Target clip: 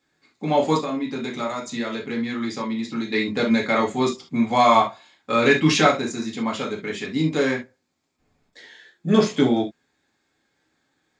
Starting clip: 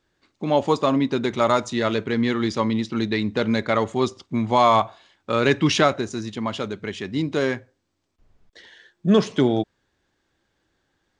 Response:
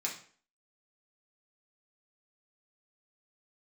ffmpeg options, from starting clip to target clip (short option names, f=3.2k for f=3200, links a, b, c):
-filter_complex "[0:a]asplit=3[a][b][c];[a]afade=t=out:st=0.77:d=0.02[d];[b]acompressor=threshold=-25dB:ratio=6,afade=t=in:st=0.77:d=0.02,afade=t=out:st=3.12:d=0.02[e];[c]afade=t=in:st=3.12:d=0.02[f];[d][e][f]amix=inputs=3:normalize=0[g];[1:a]atrim=start_sample=2205,atrim=end_sample=3528[h];[g][h]afir=irnorm=-1:irlink=0"